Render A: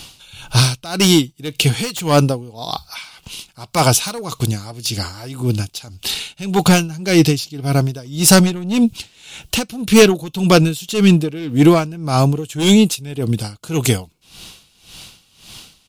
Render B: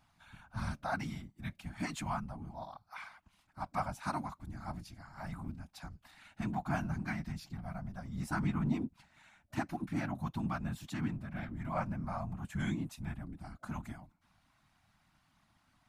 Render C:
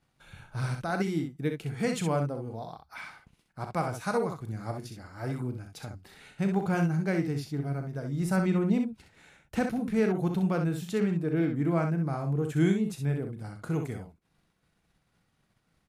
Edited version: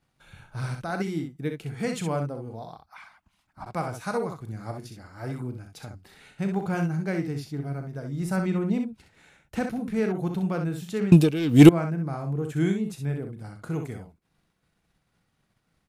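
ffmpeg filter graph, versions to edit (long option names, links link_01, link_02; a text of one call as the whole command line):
ffmpeg -i take0.wav -i take1.wav -i take2.wav -filter_complex "[2:a]asplit=3[link_01][link_02][link_03];[link_01]atrim=end=2.862[link_04];[1:a]atrim=start=2.858:end=3.662[link_05];[link_02]atrim=start=3.658:end=11.122[link_06];[0:a]atrim=start=11.118:end=11.692[link_07];[link_03]atrim=start=11.688[link_08];[link_04][link_05]acrossfade=duration=0.004:curve1=hsin:curve2=hsin[link_09];[link_09][link_06]acrossfade=duration=0.004:curve1=hsin:curve2=hsin[link_10];[link_10][link_07]acrossfade=duration=0.004:curve1=hsin:curve2=hsin[link_11];[link_11][link_08]acrossfade=duration=0.004:curve1=hsin:curve2=hsin" out.wav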